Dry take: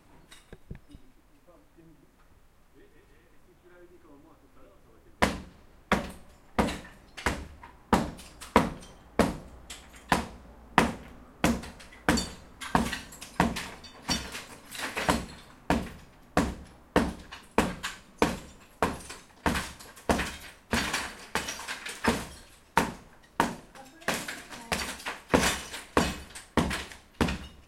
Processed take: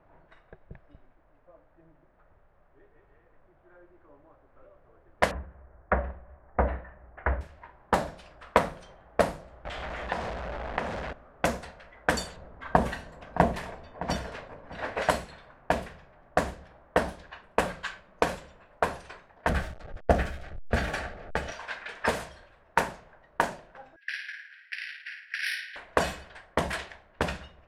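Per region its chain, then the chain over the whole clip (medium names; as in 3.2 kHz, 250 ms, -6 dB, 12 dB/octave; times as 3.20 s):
5.31–7.41 s: low-pass 1.8 kHz 24 dB/octave + peaking EQ 64 Hz +14 dB 0.62 oct
9.65–11.13 s: jump at every zero crossing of -29 dBFS + treble shelf 4.9 kHz -8.5 dB + compression 3:1, threshold -28 dBFS
12.36–15.02 s: tilt shelf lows +7 dB, about 1.2 kHz + delay 614 ms -14 dB
19.49–21.52 s: send-on-delta sampling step -41 dBFS + Butterworth band-stop 1 kHz, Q 5.1 + tilt EQ -3 dB/octave
23.96–25.76 s: steep high-pass 1.6 kHz 72 dB/octave + flutter echo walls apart 9.2 m, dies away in 0.69 s + careless resampling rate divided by 6×, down filtered, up hold
whole clip: level-controlled noise filter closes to 1.5 kHz, open at -24 dBFS; fifteen-band graphic EQ 250 Hz -7 dB, 630 Hz +9 dB, 1.6 kHz +5 dB; trim -3 dB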